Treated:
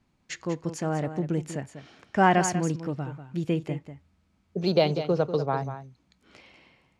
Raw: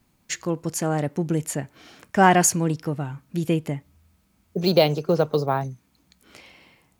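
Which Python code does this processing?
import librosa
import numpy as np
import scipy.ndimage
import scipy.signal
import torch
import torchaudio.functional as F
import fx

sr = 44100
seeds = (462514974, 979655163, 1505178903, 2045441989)

y = fx.air_absorb(x, sr, metres=87.0)
y = y + 10.0 ** (-11.0 / 20.0) * np.pad(y, (int(193 * sr / 1000.0), 0))[:len(y)]
y = y * librosa.db_to_amplitude(-4.0)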